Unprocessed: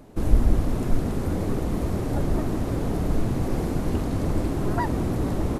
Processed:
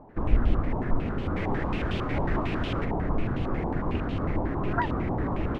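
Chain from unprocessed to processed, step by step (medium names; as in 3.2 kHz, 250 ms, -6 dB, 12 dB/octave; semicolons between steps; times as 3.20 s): 1.35–2.84 s: added noise pink -34 dBFS; step-sequenced low-pass 11 Hz 900–3000 Hz; trim -4 dB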